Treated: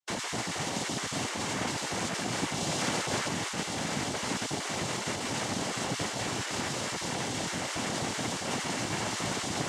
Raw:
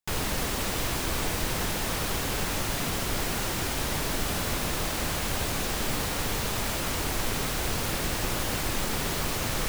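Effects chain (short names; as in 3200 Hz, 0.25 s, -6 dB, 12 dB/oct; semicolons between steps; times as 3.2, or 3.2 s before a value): random spectral dropouts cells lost 23%; 2.6–3.28 comb 2.1 ms, depth 91%; noise vocoder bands 4; notch 2500 Hz, Q 14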